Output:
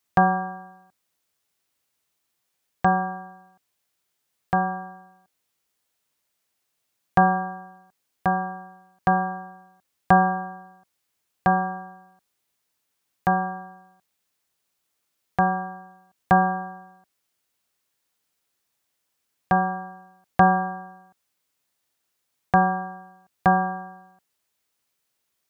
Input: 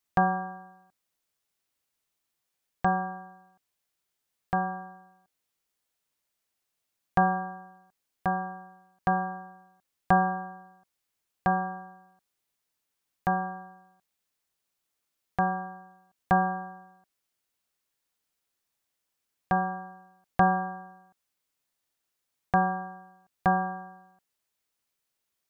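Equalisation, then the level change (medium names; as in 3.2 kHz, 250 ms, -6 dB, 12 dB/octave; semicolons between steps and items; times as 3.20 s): high-pass 51 Hz; +5.5 dB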